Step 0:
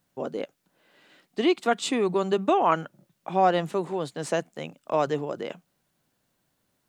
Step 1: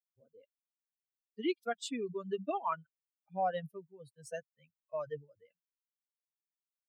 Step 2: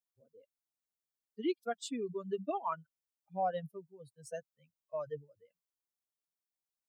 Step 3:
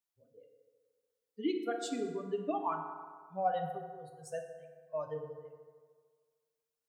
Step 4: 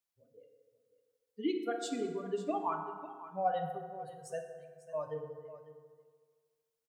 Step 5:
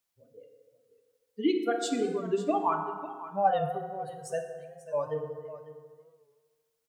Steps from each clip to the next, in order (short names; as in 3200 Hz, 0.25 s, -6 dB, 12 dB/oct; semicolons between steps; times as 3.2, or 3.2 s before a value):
per-bin expansion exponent 3; gain -8 dB
bell 2200 Hz -6.5 dB 1.3 oct
FDN reverb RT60 1.7 s, low-frequency decay 0.8×, high-frequency decay 0.5×, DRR 3 dB
echo 0.547 s -15 dB
record warp 45 rpm, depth 100 cents; gain +7 dB